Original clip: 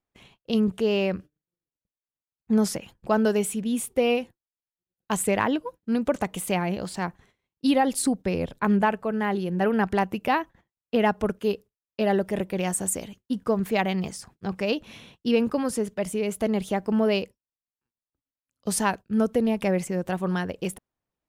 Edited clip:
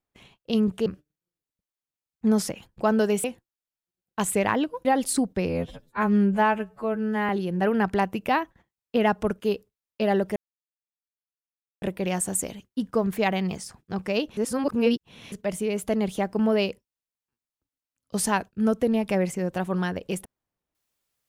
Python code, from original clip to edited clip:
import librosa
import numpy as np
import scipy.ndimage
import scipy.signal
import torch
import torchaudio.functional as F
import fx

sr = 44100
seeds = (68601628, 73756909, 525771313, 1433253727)

y = fx.edit(x, sr, fx.cut(start_s=0.86, length_s=0.26),
    fx.cut(start_s=3.5, length_s=0.66),
    fx.cut(start_s=5.77, length_s=1.97),
    fx.stretch_span(start_s=8.38, length_s=0.9, factor=2.0),
    fx.insert_silence(at_s=12.35, length_s=1.46),
    fx.reverse_span(start_s=14.9, length_s=0.95), tone=tone)